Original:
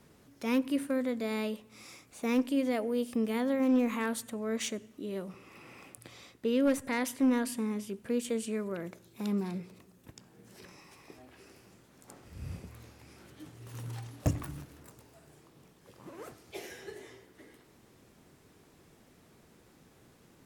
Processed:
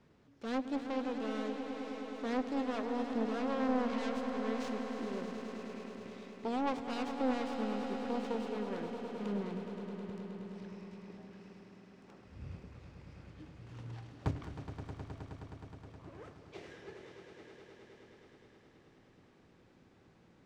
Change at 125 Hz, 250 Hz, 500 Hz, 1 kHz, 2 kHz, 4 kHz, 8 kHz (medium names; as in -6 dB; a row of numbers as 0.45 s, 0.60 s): -4.0 dB, -5.5 dB, -4.0 dB, +2.5 dB, -5.0 dB, -4.5 dB, -16.0 dB